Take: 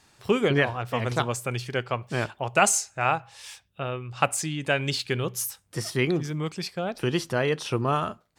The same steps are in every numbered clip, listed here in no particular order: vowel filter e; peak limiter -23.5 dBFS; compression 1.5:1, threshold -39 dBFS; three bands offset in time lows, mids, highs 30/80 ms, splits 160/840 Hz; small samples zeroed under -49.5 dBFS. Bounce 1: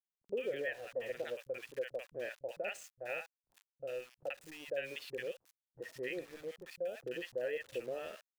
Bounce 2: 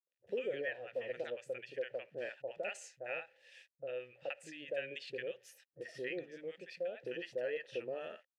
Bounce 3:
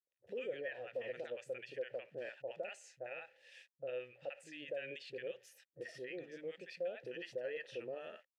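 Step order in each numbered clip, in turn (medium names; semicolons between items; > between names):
vowel filter > small samples zeroed > peak limiter > three bands offset in time > compression; small samples zeroed > vowel filter > peak limiter > compression > three bands offset in time; small samples zeroed > three bands offset in time > peak limiter > vowel filter > compression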